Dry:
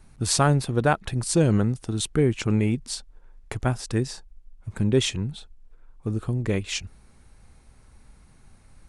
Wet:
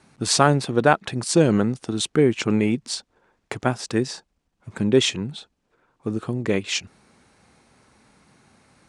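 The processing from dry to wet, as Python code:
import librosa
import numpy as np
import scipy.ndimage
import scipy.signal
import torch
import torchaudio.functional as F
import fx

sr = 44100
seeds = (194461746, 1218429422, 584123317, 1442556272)

y = fx.bandpass_edges(x, sr, low_hz=190.0, high_hz=7600.0)
y = y * librosa.db_to_amplitude(5.0)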